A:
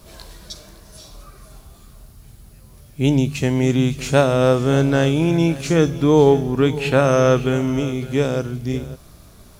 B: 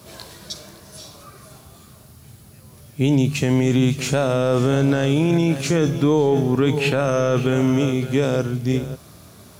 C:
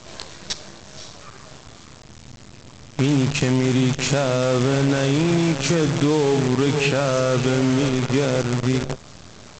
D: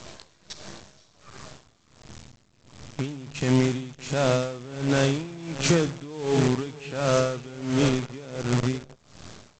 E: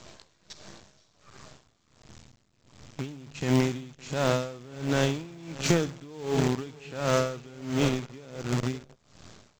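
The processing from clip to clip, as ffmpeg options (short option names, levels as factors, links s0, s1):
-af "highpass=f=84:w=0.5412,highpass=f=84:w=1.3066,alimiter=limit=0.251:level=0:latency=1:release=13,volume=1.41"
-af "aresample=16000,acrusher=bits=5:dc=4:mix=0:aa=0.000001,aresample=44100,acompressor=threshold=0.0501:ratio=2,volume=1.88"
-af "aeval=exprs='val(0)*pow(10,-21*(0.5-0.5*cos(2*PI*1.4*n/s))/20)':c=same"
-af "acrusher=bits=9:mode=log:mix=0:aa=0.000001,aeval=exprs='0.376*(cos(1*acos(clip(val(0)/0.376,-1,1)))-cos(1*PI/2))+0.0596*(cos(3*acos(clip(val(0)/0.376,-1,1)))-cos(3*PI/2))+0.00237*(cos(7*acos(clip(val(0)/0.376,-1,1)))-cos(7*PI/2))':c=same"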